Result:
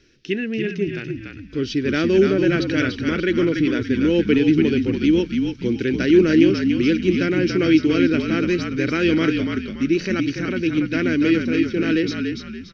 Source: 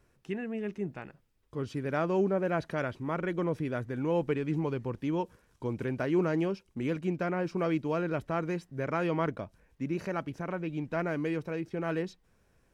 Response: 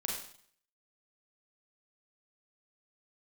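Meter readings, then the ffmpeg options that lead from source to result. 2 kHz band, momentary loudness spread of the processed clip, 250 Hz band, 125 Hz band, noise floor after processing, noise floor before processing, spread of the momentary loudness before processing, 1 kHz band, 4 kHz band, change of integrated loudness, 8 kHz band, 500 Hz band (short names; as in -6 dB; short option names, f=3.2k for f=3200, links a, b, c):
+14.0 dB, 9 LU, +15.5 dB, +9.0 dB, -37 dBFS, -69 dBFS, 10 LU, +2.0 dB, +21.5 dB, +13.0 dB, n/a, +10.5 dB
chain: -filter_complex "[0:a]firequalizer=gain_entry='entry(160,0);entry(310,11);entry(690,-11);entry(1000,-14);entry(1500,5);entry(3000,14);entry(5700,15);entry(8100,-15)':delay=0.05:min_phase=1,asplit=2[a][b];[b]asplit=4[c][d][e][f];[c]adelay=287,afreqshift=-48,volume=-5dB[g];[d]adelay=574,afreqshift=-96,volume=-13.9dB[h];[e]adelay=861,afreqshift=-144,volume=-22.7dB[i];[f]adelay=1148,afreqshift=-192,volume=-31.6dB[j];[g][h][i][j]amix=inputs=4:normalize=0[k];[a][k]amix=inputs=2:normalize=0,volume=6dB"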